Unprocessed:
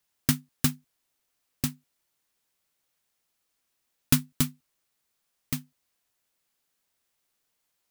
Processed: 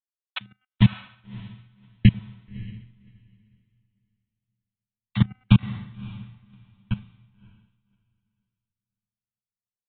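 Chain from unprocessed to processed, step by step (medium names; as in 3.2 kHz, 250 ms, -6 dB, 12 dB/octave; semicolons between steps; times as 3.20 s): random holes in the spectrogram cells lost 21%; bass shelf 120 Hz +9.5 dB; comb 7.4 ms, depth 63%; de-hum 318.7 Hz, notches 11; level held to a coarse grid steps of 23 dB; tape speed -20%; square tremolo 9.8 Hz, depth 60%, duty 50%; resampled via 8 kHz; echo that smears into a reverb 588 ms, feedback 44%, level -8.5 dB; three bands expanded up and down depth 100%; trim +4 dB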